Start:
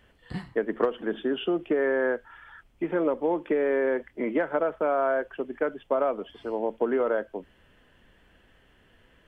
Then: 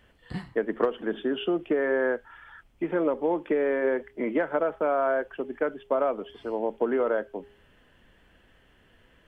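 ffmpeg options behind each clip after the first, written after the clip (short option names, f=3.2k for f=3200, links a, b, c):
-af "bandreject=f=409:t=h:w=4,bandreject=f=818:t=h:w=4"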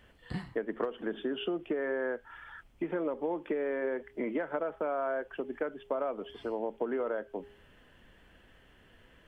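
-af "acompressor=threshold=-33dB:ratio=2.5"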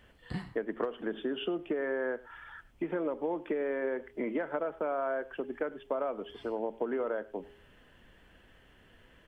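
-af "aecho=1:1:100:0.0891"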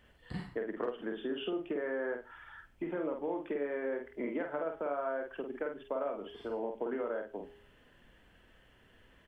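-filter_complex "[0:a]asplit=2[a][b];[b]adelay=49,volume=-4.5dB[c];[a][c]amix=inputs=2:normalize=0,volume=-4dB"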